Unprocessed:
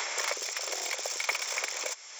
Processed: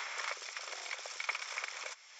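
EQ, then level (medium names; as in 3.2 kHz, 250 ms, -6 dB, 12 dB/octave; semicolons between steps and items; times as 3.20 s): tape spacing loss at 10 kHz 38 dB; dynamic bell 1.3 kHz, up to +5 dB, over -54 dBFS, Q 2.2; differentiator; +12.0 dB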